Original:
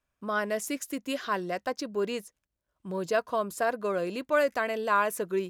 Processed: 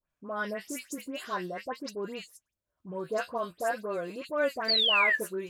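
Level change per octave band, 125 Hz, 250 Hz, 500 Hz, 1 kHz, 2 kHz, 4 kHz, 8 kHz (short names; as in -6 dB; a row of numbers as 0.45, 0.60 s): -4.5, -4.5, -4.5, -4.0, +2.5, +13.0, -4.0 dB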